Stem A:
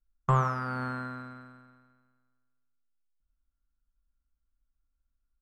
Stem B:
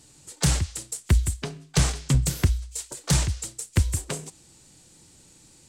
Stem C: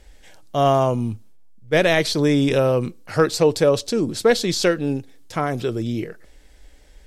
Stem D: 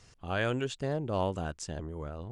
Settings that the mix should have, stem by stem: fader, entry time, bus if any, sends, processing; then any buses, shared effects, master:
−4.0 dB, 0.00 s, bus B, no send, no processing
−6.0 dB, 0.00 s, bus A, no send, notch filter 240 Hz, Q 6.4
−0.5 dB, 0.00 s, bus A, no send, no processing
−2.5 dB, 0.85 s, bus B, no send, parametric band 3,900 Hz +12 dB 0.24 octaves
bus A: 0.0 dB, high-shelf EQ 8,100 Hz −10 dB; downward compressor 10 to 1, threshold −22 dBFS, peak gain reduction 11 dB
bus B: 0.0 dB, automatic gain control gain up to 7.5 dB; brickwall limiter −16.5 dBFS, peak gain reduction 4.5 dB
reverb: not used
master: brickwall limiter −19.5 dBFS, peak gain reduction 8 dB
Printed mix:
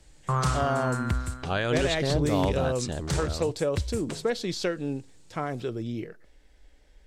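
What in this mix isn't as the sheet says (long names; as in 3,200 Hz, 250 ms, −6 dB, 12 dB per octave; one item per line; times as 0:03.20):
stem C −0.5 dB → −8.0 dB
stem D: entry 0.85 s → 1.20 s
master: missing brickwall limiter −19.5 dBFS, peak gain reduction 8 dB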